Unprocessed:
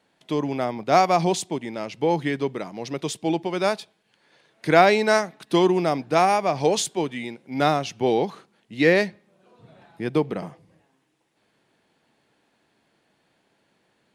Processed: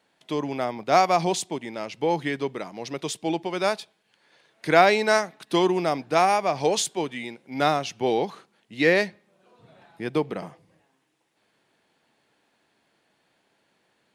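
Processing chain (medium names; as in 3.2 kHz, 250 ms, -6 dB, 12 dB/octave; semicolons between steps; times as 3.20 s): bass shelf 380 Hz -5.5 dB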